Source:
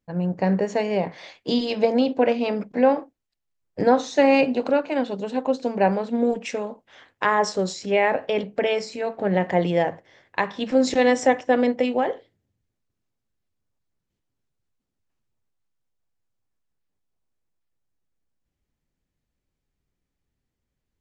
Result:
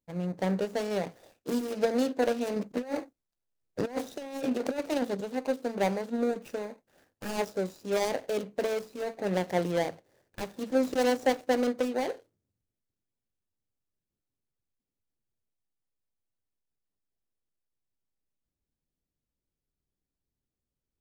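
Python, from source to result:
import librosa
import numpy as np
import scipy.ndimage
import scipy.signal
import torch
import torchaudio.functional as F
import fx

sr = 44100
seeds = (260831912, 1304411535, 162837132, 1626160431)

y = scipy.ndimage.median_filter(x, 41, mode='constant')
y = fx.bass_treble(y, sr, bass_db=-4, treble_db=10)
y = fx.over_compress(y, sr, threshold_db=-25.0, ratio=-0.5, at=(2.56, 5.21))
y = y * 10.0 ** (-5.0 / 20.0)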